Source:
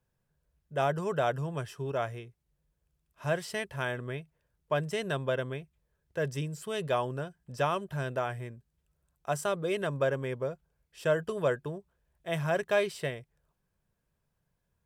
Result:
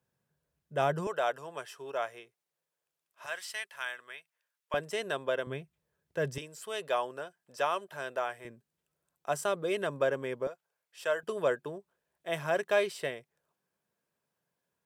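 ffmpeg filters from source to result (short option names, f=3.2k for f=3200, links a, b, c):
-af "asetnsamples=n=441:p=0,asendcmd='1.07 highpass f 530;3.26 highpass f 1300;4.74 highpass f 340;5.47 highpass f 130;6.38 highpass f 480;8.45 highpass f 230;10.47 highpass f 630;11.23 highpass f 260',highpass=130"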